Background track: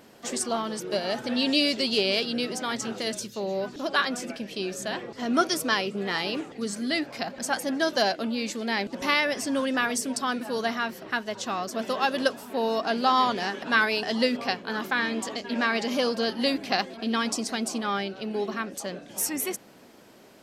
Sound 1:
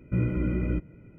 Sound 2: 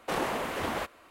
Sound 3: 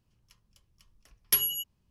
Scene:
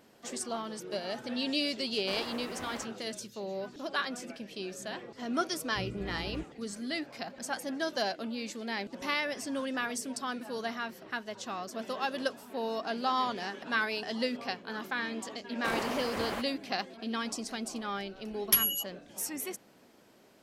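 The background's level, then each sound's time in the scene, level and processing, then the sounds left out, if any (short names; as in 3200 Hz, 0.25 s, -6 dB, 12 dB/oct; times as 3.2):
background track -8 dB
1.99 add 2 -9.5 dB + crossover distortion -49 dBFS
5.64 add 1 -14.5 dB
15.56 add 2 -3 dB + crossover distortion -52 dBFS
17.2 add 3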